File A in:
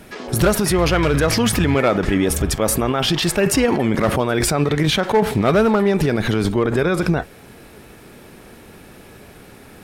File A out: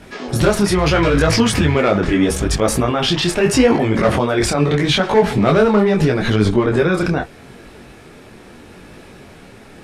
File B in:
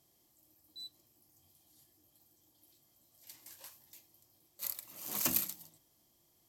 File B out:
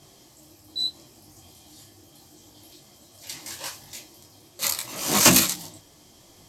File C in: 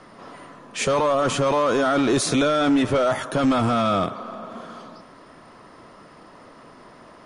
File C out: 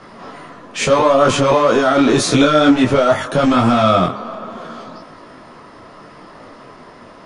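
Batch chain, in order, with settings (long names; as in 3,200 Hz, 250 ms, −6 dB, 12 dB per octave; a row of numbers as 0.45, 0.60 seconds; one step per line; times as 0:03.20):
low-pass filter 7,900 Hz 12 dB per octave
micro pitch shift up and down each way 27 cents
normalise the peak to −1.5 dBFS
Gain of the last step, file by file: +6.0, +25.0, +11.0 decibels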